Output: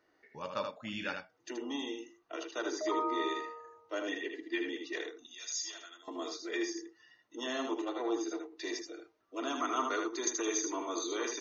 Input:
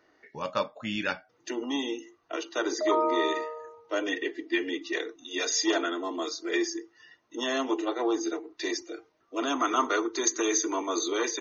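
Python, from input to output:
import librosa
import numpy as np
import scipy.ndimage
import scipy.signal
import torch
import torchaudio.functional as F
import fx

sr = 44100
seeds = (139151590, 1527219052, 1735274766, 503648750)

y = fx.differentiator(x, sr, at=(5.26, 6.08))
y = y + 10.0 ** (-5.5 / 20.0) * np.pad(y, (int(78 * sr / 1000.0), 0))[:len(y)]
y = y * 10.0 ** (-8.0 / 20.0)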